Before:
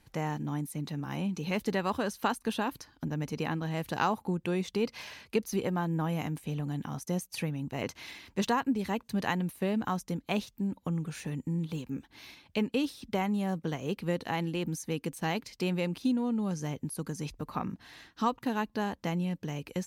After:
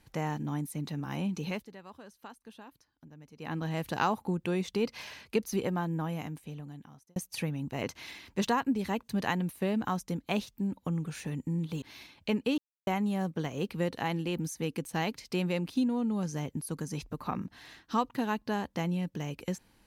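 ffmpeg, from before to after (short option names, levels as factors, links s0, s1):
-filter_complex "[0:a]asplit=7[s0][s1][s2][s3][s4][s5][s6];[s0]atrim=end=1.66,asetpts=PTS-STARTPTS,afade=t=out:st=1.45:d=0.21:silence=0.11885[s7];[s1]atrim=start=1.66:end=3.38,asetpts=PTS-STARTPTS,volume=0.119[s8];[s2]atrim=start=3.38:end=7.16,asetpts=PTS-STARTPTS,afade=t=in:d=0.21:silence=0.11885,afade=t=out:st=2.26:d=1.52[s9];[s3]atrim=start=7.16:end=11.822,asetpts=PTS-STARTPTS,afade=t=in:d=0.004:c=hsin[s10];[s4]atrim=start=12.098:end=12.86,asetpts=PTS-STARTPTS,afade=t=out:st=0.758:d=0.004:c=hsin[s11];[s5]atrim=start=12.86:end=13.15,asetpts=PTS-STARTPTS,volume=0[s12];[s6]atrim=start=13.15,asetpts=PTS-STARTPTS,afade=t=in:d=0.004:c=hsin[s13];[s7][s8][s9][s10]concat=n=4:v=0:a=1[s14];[s11][s12][s13]concat=n=3:v=0:a=1[s15];[s14][s15]acrossfade=d=0.004:c1=hsin:c2=hsin"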